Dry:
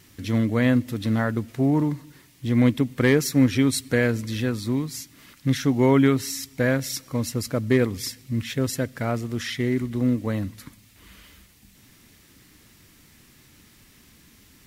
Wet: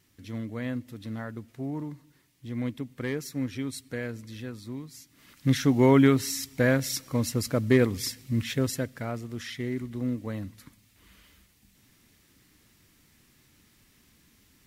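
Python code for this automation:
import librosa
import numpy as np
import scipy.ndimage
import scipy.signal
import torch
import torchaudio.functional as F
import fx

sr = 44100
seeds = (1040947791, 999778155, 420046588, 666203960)

y = fx.gain(x, sr, db=fx.line((5.0, -13.0), (5.49, -1.0), (8.52, -1.0), (9.11, -8.0)))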